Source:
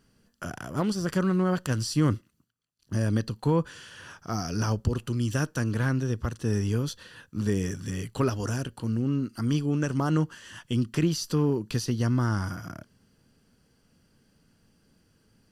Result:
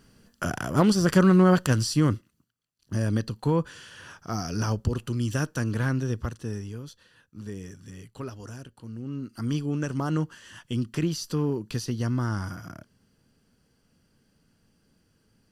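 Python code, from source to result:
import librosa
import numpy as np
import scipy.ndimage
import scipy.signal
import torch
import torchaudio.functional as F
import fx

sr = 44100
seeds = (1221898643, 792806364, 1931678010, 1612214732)

y = fx.gain(x, sr, db=fx.line((1.54, 7.0), (2.14, 0.0), (6.21, 0.0), (6.73, -11.0), (8.92, -11.0), (9.44, -2.0)))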